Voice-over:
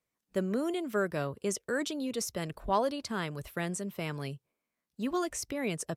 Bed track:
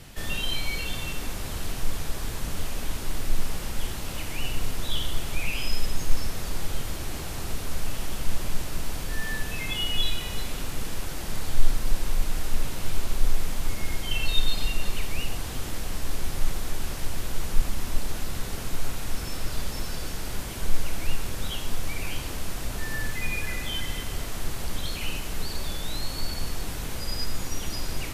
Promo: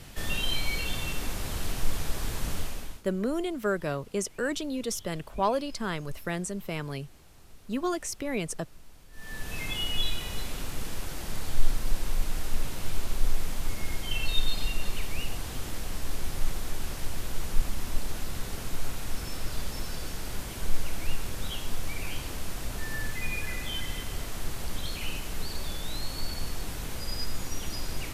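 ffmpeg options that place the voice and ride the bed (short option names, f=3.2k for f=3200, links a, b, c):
-filter_complex "[0:a]adelay=2700,volume=2dB[a];[1:a]volume=18.5dB,afade=t=out:st=2.51:d=0.52:silence=0.0841395,afade=t=in:st=9.12:d=0.47:silence=0.112202[b];[a][b]amix=inputs=2:normalize=0"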